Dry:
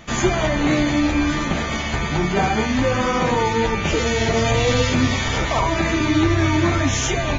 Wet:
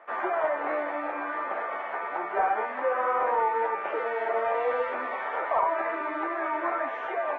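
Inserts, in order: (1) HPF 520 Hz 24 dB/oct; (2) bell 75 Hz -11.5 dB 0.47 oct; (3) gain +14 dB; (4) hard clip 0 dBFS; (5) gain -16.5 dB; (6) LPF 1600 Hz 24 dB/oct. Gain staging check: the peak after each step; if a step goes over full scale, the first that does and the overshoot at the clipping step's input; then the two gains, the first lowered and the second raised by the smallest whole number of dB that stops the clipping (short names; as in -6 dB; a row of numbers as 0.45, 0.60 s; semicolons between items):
-9.5, -9.5, +4.5, 0.0, -16.5, -15.5 dBFS; step 3, 4.5 dB; step 3 +9 dB, step 5 -11.5 dB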